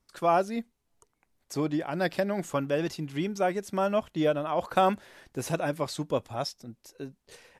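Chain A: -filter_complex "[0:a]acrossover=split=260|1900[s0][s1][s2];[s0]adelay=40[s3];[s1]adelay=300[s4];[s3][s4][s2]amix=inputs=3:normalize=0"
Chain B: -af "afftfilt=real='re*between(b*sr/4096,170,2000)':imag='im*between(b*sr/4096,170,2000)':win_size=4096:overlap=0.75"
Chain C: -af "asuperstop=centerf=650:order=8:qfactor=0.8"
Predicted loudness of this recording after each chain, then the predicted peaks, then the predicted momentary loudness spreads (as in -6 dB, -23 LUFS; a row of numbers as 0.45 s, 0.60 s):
-30.5 LUFS, -29.5 LUFS, -34.0 LUFS; -11.5 dBFS, -10.5 dBFS, -15.5 dBFS; 14 LU, 17 LU, 14 LU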